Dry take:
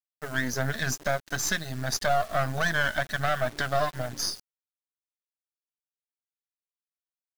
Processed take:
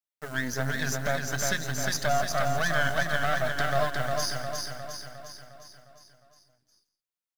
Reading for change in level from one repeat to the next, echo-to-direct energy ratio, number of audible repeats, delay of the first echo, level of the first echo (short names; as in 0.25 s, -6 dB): no steady repeat, -2.0 dB, 10, 0.166 s, -17.0 dB